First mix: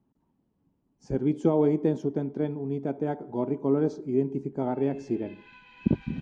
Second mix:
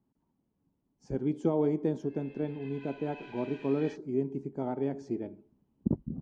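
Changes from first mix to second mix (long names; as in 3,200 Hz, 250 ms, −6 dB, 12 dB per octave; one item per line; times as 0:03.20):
speech −5.0 dB
background: entry −2.65 s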